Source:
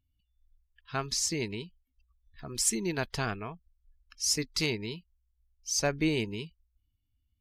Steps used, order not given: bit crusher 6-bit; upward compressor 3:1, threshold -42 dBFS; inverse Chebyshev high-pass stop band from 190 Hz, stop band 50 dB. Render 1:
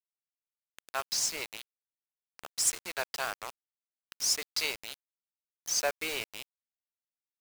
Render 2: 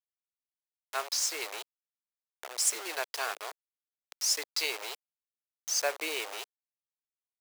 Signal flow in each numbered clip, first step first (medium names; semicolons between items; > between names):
inverse Chebyshev high-pass > upward compressor > bit crusher; bit crusher > inverse Chebyshev high-pass > upward compressor